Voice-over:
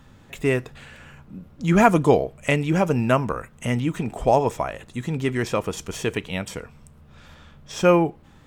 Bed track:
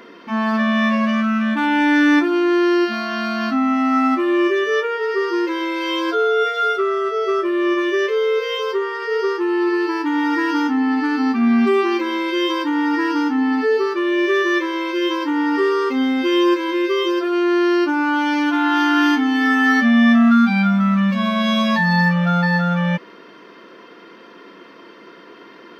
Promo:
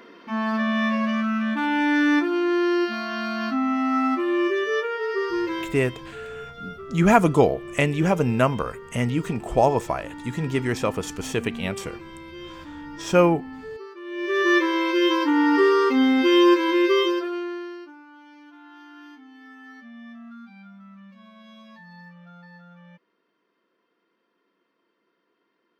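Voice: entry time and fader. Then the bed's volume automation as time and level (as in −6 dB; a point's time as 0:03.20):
5.30 s, −0.5 dB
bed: 0:05.59 −5.5 dB
0:05.82 −20 dB
0:13.99 −20 dB
0:14.50 0 dB
0:16.98 0 dB
0:18.06 −30 dB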